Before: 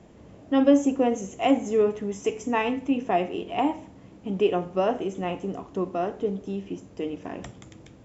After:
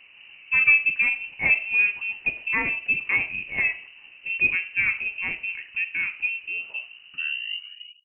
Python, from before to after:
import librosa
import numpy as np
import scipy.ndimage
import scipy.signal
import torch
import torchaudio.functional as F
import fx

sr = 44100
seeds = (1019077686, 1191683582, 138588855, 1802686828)

y = fx.tape_stop_end(x, sr, length_s=1.66)
y = fx.freq_invert(y, sr, carrier_hz=2900)